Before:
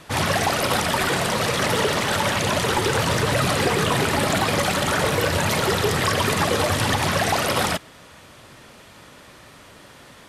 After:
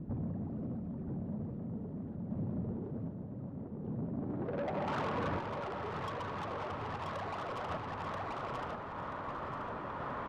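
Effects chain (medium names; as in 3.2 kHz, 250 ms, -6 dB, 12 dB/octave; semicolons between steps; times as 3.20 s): compression 16:1, threshold -34 dBFS, peak gain reduction 18 dB; low-pass sweep 230 Hz -> 1.1 kHz, 4.14–4.98 s; saturation -37 dBFS, distortion -10 dB; treble shelf 12 kHz +9.5 dB; feedback delay 982 ms, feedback 30%, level -4 dB; random-step tremolo 1.3 Hz; 2.71–5.18 s: bass shelf 130 Hz -7.5 dB; trim +5 dB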